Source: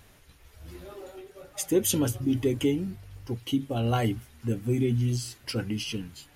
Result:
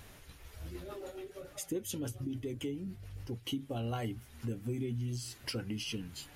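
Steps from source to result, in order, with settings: compressor 3:1, threshold -40 dBFS, peak gain reduction 16 dB; 0.68–3.45 rotary speaker horn 7 Hz; gain +2 dB

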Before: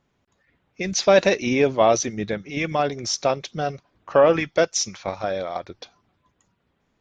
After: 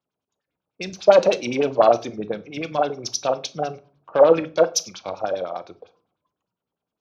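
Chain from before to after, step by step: self-modulated delay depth 0.1 ms; HPF 220 Hz 6 dB/oct; bell 1900 Hz -13.5 dB 0.36 oct; in parallel at 0 dB: compressor, threshold -27 dBFS, peak gain reduction 14 dB; on the sum: LFO low-pass sine 9.9 Hz 520–6100 Hz; shoebox room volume 400 m³, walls furnished, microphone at 0.53 m; three-band expander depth 40%; gain -4.5 dB

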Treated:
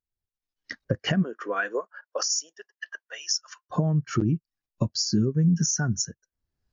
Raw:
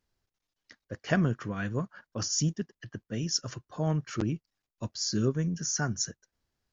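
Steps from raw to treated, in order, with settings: recorder AGC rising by 22 dB/s; 1.22–3.69 HPF 320 Hz -> 1000 Hz 24 dB/oct; compressor 12:1, threshold -28 dBFS, peak gain reduction 9.5 dB; spectral expander 1.5:1; gain +5.5 dB

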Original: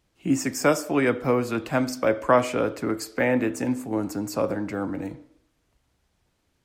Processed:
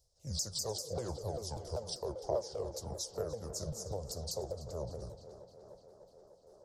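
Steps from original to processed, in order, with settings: repeated pitch sweeps -10 st, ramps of 0.196 s; EQ curve 100 Hz 0 dB, 260 Hz -27 dB, 540 Hz +3 dB, 1800 Hz -28 dB, 2500 Hz -25 dB, 5000 Hz +8 dB, 9800 Hz +4 dB; compressor 3:1, threshold -33 dBFS, peak gain reduction 11.5 dB; on a send: tape echo 0.3 s, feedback 83%, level -12 dB, low-pass 5000 Hz; on the sum: noise-modulated level, depth 55%

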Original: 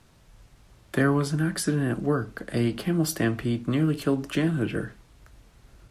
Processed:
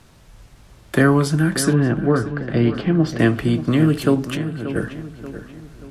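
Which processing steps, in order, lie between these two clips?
1.73–3.19 air absorption 210 m; 4.22–4.76 compressor 12:1, threshold -33 dBFS, peak gain reduction 14.5 dB; darkening echo 0.583 s, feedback 46%, low-pass 3000 Hz, level -11.5 dB; gain +7.5 dB

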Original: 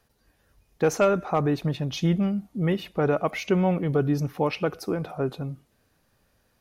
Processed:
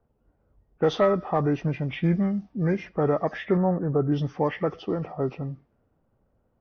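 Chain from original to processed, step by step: nonlinear frequency compression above 1100 Hz 1.5:1; low-pass opened by the level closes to 780 Hz, open at -20.5 dBFS; 3.57–4.12 Chebyshev low-pass 1500 Hz, order 4

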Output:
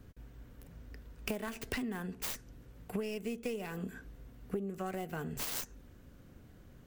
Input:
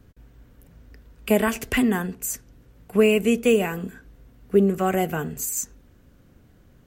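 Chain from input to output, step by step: tracing distortion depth 0.26 ms; compressor 16:1, threshold -32 dBFS, peak gain reduction 20.5 dB; gain -2 dB

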